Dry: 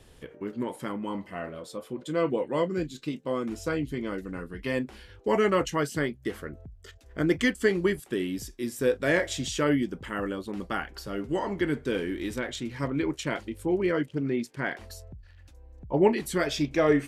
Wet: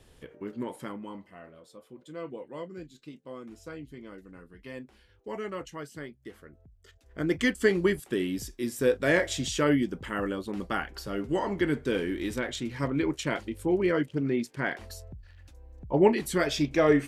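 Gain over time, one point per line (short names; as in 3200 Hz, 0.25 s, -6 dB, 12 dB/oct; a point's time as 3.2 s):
0.79 s -3 dB
1.38 s -12.5 dB
6.55 s -12.5 dB
7.58 s +0.5 dB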